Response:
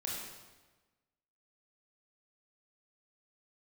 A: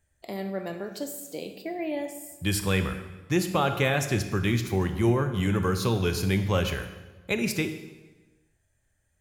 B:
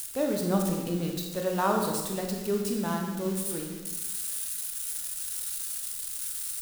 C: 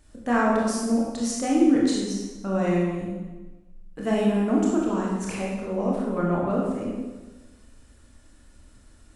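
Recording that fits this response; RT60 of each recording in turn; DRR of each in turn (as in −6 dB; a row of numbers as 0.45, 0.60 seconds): C; 1.2, 1.2, 1.2 seconds; 8.0, 1.0, −4.0 decibels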